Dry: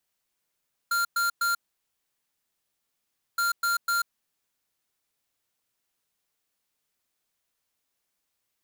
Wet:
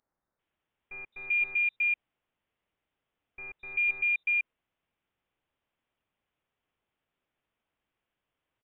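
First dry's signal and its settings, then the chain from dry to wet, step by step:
beep pattern square 1390 Hz, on 0.14 s, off 0.11 s, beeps 3, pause 1.83 s, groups 2, -25 dBFS
tilt +2.5 dB/oct; three bands offset in time highs, lows, mids 0.21/0.39 s, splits 200/2200 Hz; inverted band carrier 3800 Hz

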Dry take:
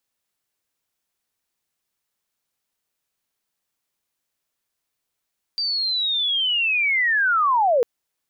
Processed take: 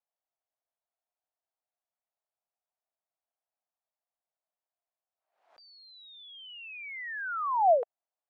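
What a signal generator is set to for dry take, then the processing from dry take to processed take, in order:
chirp linear 4700 Hz -> 450 Hz -21 dBFS -> -14.5 dBFS 2.25 s
ladder band-pass 750 Hz, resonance 65%; backwards sustainer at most 98 dB/s

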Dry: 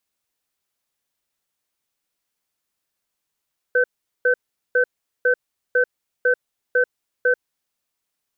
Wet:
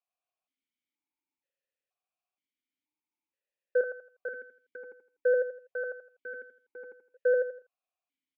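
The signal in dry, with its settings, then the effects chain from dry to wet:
cadence 496 Hz, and 1530 Hz, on 0.09 s, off 0.41 s, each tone -16.5 dBFS 3.98 s
feedback echo 82 ms, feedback 31%, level -3 dB; vowel sequencer 2.1 Hz

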